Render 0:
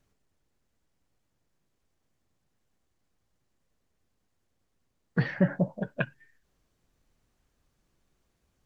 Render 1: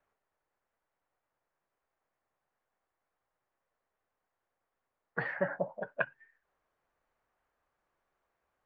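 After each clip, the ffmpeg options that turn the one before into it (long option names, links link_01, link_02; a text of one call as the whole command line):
ffmpeg -i in.wav -filter_complex "[0:a]acrossover=split=530 2000:gain=0.0891 1 0.0891[link_01][link_02][link_03];[link_01][link_02][link_03]amix=inputs=3:normalize=0,volume=3dB" out.wav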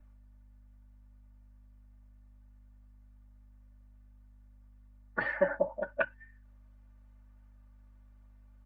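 ffmpeg -i in.wav -filter_complex "[0:a]aeval=exprs='val(0)+0.000631*(sin(2*PI*50*n/s)+sin(2*PI*2*50*n/s)/2+sin(2*PI*3*50*n/s)/3+sin(2*PI*4*50*n/s)/4+sin(2*PI*5*50*n/s)/5)':channel_layout=same,aecho=1:1:3.4:0.99,acrossover=split=120[link_01][link_02];[link_01]acontrast=28[link_03];[link_03][link_02]amix=inputs=2:normalize=0" out.wav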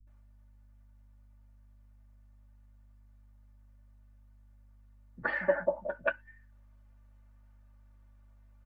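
ffmpeg -i in.wav -filter_complex "[0:a]asplit=2[link_01][link_02];[link_02]adelay=12,volume=-12.5dB[link_03];[link_01][link_03]amix=inputs=2:normalize=0,acrossover=split=200[link_04][link_05];[link_05]adelay=70[link_06];[link_04][link_06]amix=inputs=2:normalize=0" out.wav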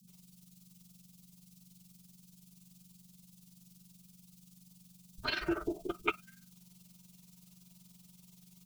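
ffmpeg -i in.wav -af "tremolo=f=21:d=0.667,afreqshift=-230,aexciter=amount=15.2:drive=7.7:freq=2700" out.wav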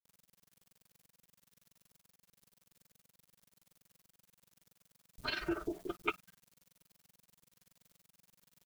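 ffmpeg -i in.wav -af "aeval=exprs='val(0)*gte(abs(val(0)),0.00251)':channel_layout=same,volume=-3dB" out.wav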